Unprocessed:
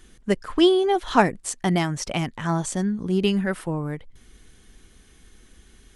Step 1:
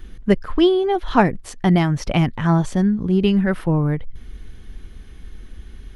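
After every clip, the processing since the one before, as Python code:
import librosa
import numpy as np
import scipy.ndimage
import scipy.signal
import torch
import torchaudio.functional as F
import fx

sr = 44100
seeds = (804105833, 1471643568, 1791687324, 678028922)

y = fx.low_shelf(x, sr, hz=140.0, db=11.5)
y = fx.rider(y, sr, range_db=3, speed_s=0.5)
y = fx.peak_eq(y, sr, hz=8100.0, db=-14.5, octaves=1.0)
y = F.gain(torch.from_numpy(y), 2.5).numpy()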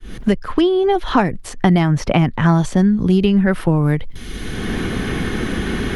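y = fx.fade_in_head(x, sr, length_s=1.08)
y = fx.band_squash(y, sr, depth_pct=100)
y = F.gain(torch.from_numpy(y), 3.0).numpy()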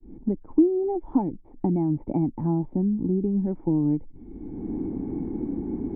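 y = fx.formant_cascade(x, sr, vowel='u')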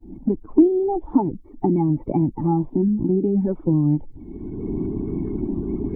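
y = fx.spec_quant(x, sr, step_db=30)
y = F.gain(torch.from_numpy(y), 5.0).numpy()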